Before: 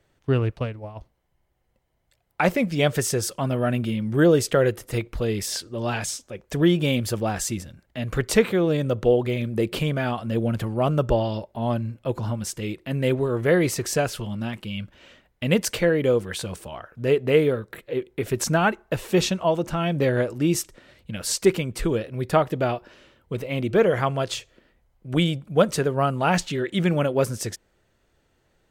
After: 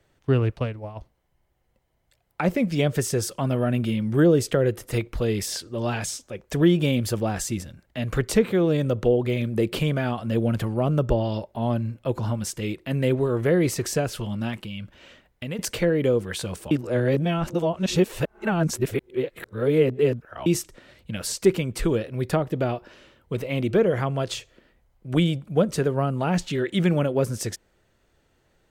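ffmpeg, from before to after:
ffmpeg -i in.wav -filter_complex "[0:a]asettb=1/sr,asplit=3[link_01][link_02][link_03];[link_01]atrim=end=14.654[link_04];[link_02]atrim=start=14.65:end=15.59,asetpts=PTS-STARTPTS,afade=type=in:duration=0.004:curve=qsin,afade=type=out:start_time=0.936:duration=0.004:curve=qsin,acompressor=threshold=-32dB:ratio=3:attack=3.2:release=140:knee=1:detection=peak[link_05];[link_03]atrim=start=15.586[link_06];[link_04][link_05]acrossfade=duration=0.004:curve1=hsin:curve2=qsin[link_07];[link_07][link_06]acrossfade=duration=0.004:curve1=qsin:curve2=hsin,asplit=3[link_08][link_09][link_10];[link_08]atrim=end=16.712[link_11];[link_09]atrim=start=16.708:end=20.462,asetpts=PTS-STARTPTS,areverse[link_12];[link_10]atrim=start=20.458[link_13];[link_11][link_12]acrossfade=duration=0.004:curve1=hsin:curve2=hsin[link_14];[link_14][link_13]acrossfade=duration=0.004:curve1=hsin:curve2=hsin,acrossover=split=480[link_15][link_16];[link_16]acompressor=threshold=-28dB:ratio=6[link_17];[link_15][link_17]amix=inputs=2:normalize=0,volume=1dB" out.wav

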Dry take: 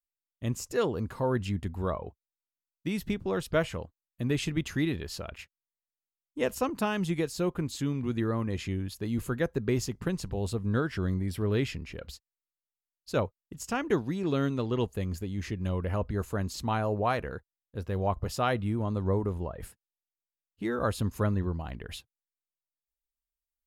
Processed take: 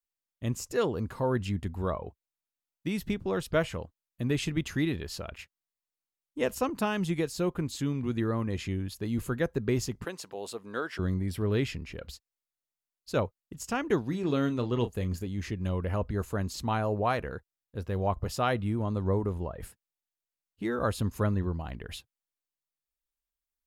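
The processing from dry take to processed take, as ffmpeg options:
ffmpeg -i in.wav -filter_complex "[0:a]asettb=1/sr,asplit=3[link_01][link_02][link_03];[link_01]atrim=end=10.054[link_04];[link_02]atrim=start=10.05:end=10.99,asetpts=PTS-STARTPTS,afade=type=in:duration=0.004:curve=qsin,afade=type=out:start_time=0.936:duration=0.004:curve=qsin,highpass=460[link_05];[link_03]atrim=start=10.986[link_06];[link_04][link_05]acrossfade=duration=0.004:curve1=hsin:curve2=qsin[link_07];[link_07][link_06]acrossfade=duration=0.004:curve1=qsin:curve2=hsin,asettb=1/sr,asplit=3[link_08][link_09][link_10];[link_08]atrim=end=14.084[link_11];[link_09]atrim=start=14.08:end=15.27,asetpts=PTS-STARTPTS,afade=type=in:duration=0.004:curve=qsin,afade=type=out:start_time=1.186:duration=0.004:curve=qsin,asplit=2[link_12][link_13];[link_13]adelay=33,volume=-11.5dB[link_14];[link_12][link_14]amix=inputs=2:normalize=0,atrim=end_sample=52479[link_15];[link_10]atrim=start=15.266[link_16];[link_11][link_15]acrossfade=duration=0.004:curve1=hsin:curve2=qsin[link_17];[link_17][link_16]acrossfade=duration=0.004:curve1=qsin:curve2=hsin" out.wav

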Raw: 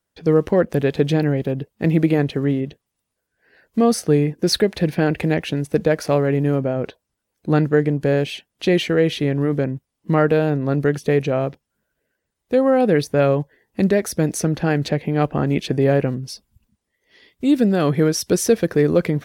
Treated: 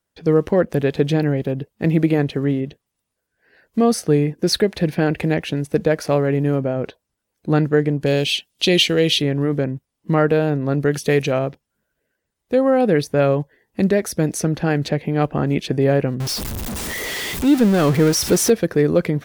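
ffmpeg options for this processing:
ffmpeg -i in.wav -filter_complex "[0:a]asettb=1/sr,asplit=3[link_01][link_02][link_03];[link_01]atrim=end=8.064[link_04];[link_02]atrim=start=8.06:end=9.22,asetpts=PTS-STARTPTS,afade=type=in:duration=0.004:curve=qsin,afade=type=out:start_time=1.156:duration=0.004:curve=qsin,highshelf=frequency=2300:width_type=q:width=1.5:gain=9.5[link_05];[link_03]atrim=start=9.216[link_06];[link_04][link_05]acrossfade=duration=0.004:curve1=hsin:curve2=qsin[link_07];[link_07][link_06]acrossfade=duration=0.004:curve1=qsin:curve2=hsin,asettb=1/sr,asplit=3[link_08][link_09][link_10];[link_08]atrim=end=10.914[link_11];[link_09]atrim=start=10.91:end=11.39,asetpts=PTS-STARTPTS,afade=type=in:duration=0.004:curve=qsin,afade=type=out:start_time=0.476:duration=0.004:curve=qsin,highshelf=frequency=2100:gain=10[link_12];[link_10]atrim=start=11.386[link_13];[link_11][link_12]acrossfade=duration=0.004:curve1=hsin:curve2=qsin[link_14];[link_14][link_13]acrossfade=duration=0.004:curve1=qsin:curve2=hsin,asettb=1/sr,asplit=3[link_15][link_16][link_17];[link_15]atrim=end=16.204[link_18];[link_16]atrim=start=16.2:end=18.5,asetpts=PTS-STARTPTS,afade=type=in:duration=0.004:curve=qsin,afade=type=out:start_time=2.296:duration=0.004:curve=qsin,aeval=exprs='val(0)+0.5*0.0944*sgn(val(0))':channel_layout=same[link_19];[link_17]atrim=start=18.496[link_20];[link_18][link_19]acrossfade=duration=0.004:curve1=hsin:curve2=qsin[link_21];[link_21][link_20]acrossfade=duration=0.004:curve1=qsin:curve2=hsin" out.wav

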